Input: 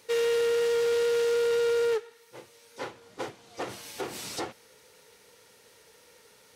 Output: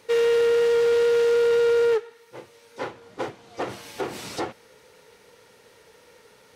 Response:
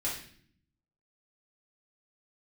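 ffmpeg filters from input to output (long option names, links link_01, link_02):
-af "highshelf=frequency=3700:gain=-9.5,volume=6dB"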